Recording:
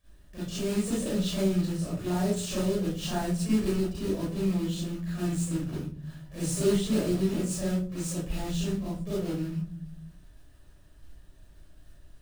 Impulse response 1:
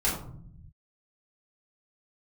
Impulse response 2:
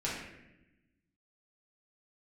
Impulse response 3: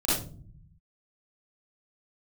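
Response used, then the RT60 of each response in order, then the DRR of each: 3; 0.60, 0.90, 0.45 s; -8.5, -8.0, -10.5 dB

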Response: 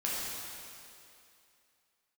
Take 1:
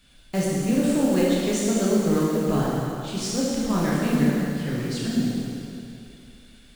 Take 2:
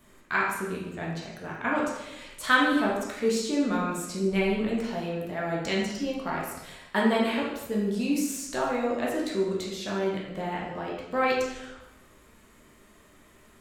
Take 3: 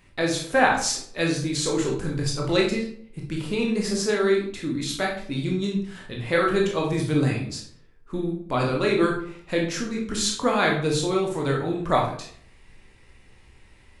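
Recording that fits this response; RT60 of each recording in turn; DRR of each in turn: 1; 2.6, 0.95, 0.60 s; -7.0, -4.5, -1.5 dB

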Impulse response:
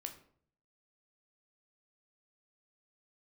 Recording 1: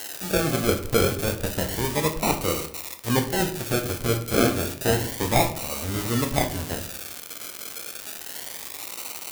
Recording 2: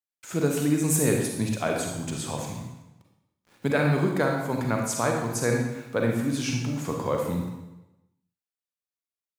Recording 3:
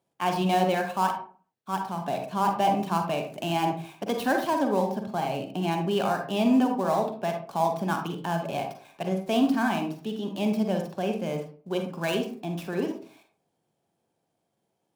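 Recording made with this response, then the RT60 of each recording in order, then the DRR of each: 1; 0.55, 1.0, 0.40 s; 4.5, 0.5, 4.0 dB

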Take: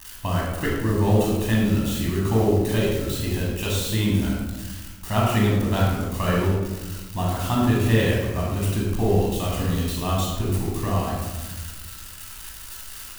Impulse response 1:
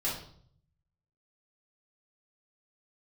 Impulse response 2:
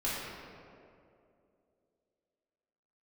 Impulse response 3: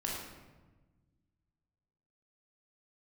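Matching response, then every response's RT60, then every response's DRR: 3; 0.60, 2.6, 1.2 s; -7.5, -9.0, -3.5 dB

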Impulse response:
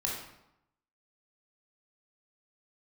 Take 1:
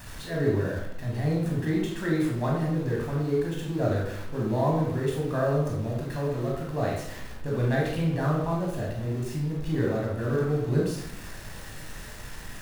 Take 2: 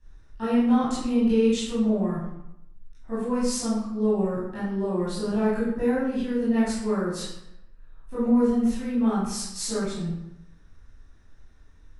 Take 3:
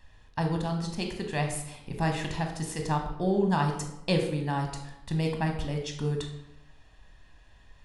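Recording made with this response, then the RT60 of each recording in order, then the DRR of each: 1; 0.85, 0.85, 0.85 s; -3.0, -12.0, 3.0 dB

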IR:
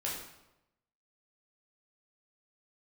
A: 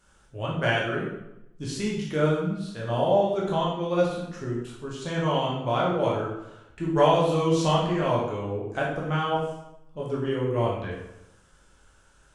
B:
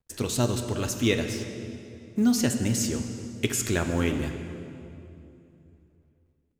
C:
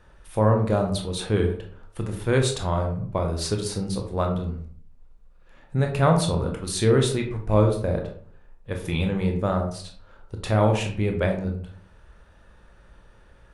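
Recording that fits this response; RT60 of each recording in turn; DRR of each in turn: A; 0.90, 2.8, 0.55 s; -5.0, 5.5, 2.5 dB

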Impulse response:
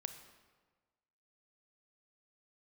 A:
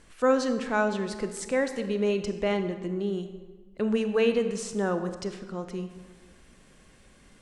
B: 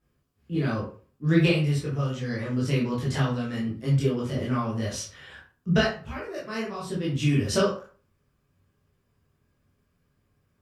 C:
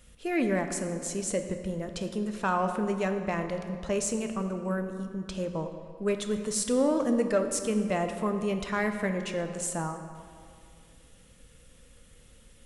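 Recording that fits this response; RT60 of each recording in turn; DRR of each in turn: A; 1.4, 0.40, 2.2 s; 8.5, -7.0, 6.0 dB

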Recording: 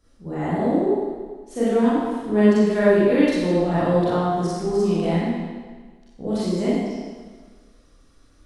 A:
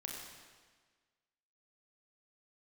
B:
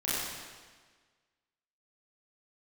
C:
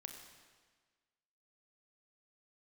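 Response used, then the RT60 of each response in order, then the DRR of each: B; 1.5, 1.5, 1.5 s; -1.5, -10.5, 3.5 dB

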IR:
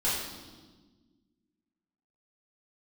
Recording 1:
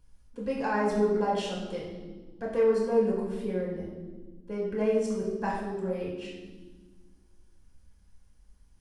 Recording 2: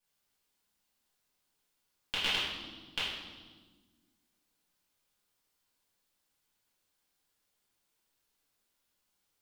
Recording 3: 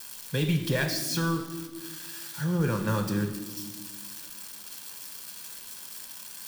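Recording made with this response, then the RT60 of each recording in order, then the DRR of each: 2; 1.4, 1.4, 1.4 s; -4.0, -10.0, 4.5 dB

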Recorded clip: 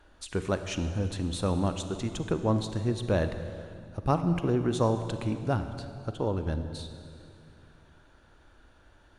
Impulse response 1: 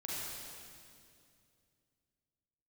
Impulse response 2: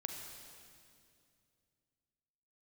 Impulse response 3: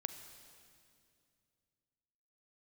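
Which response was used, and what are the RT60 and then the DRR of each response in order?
3; 2.4, 2.4, 2.4 s; -7.0, 2.5, 8.5 dB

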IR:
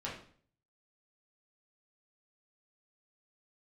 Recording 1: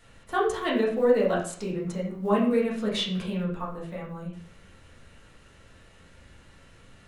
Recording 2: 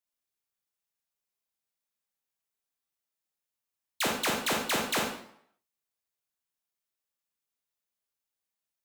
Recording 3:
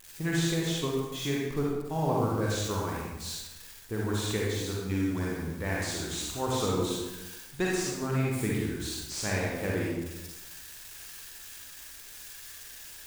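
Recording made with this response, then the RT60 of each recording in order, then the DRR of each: 1; 0.50, 0.65, 1.0 s; -6.0, -0.5, -4.5 dB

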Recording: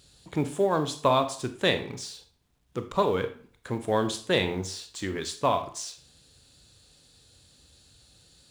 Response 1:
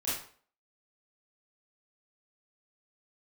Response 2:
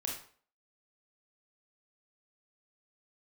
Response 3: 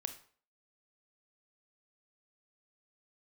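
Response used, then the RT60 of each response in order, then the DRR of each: 3; 0.50, 0.50, 0.50 s; -10.5, -1.5, 8.0 dB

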